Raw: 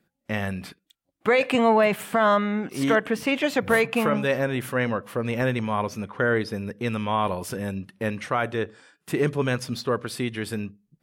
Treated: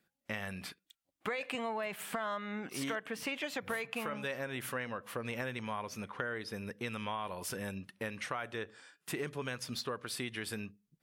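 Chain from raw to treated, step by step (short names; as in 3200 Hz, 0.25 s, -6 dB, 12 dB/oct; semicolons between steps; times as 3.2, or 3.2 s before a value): tilt shelf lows -4.5 dB, about 770 Hz; compressor 6:1, threshold -28 dBFS, peak gain reduction 12.5 dB; gain -6.5 dB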